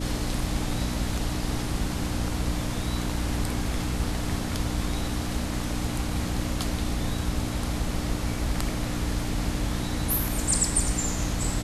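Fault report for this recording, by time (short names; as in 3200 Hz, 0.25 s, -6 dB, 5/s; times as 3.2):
hum 60 Hz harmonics 5 -32 dBFS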